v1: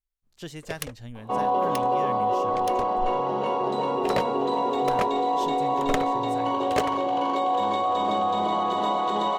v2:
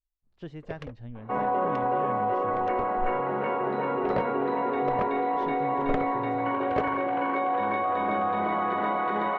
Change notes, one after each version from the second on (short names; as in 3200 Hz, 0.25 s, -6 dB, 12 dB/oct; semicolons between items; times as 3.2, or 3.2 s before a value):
second sound: add band shelf 1800 Hz +15.5 dB 1.1 oct; master: add tape spacing loss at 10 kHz 42 dB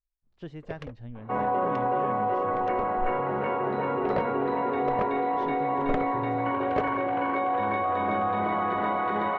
second sound: remove HPF 140 Hz 12 dB/oct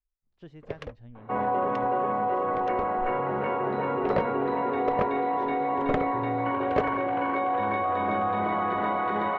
speech -6.5 dB; first sound +3.0 dB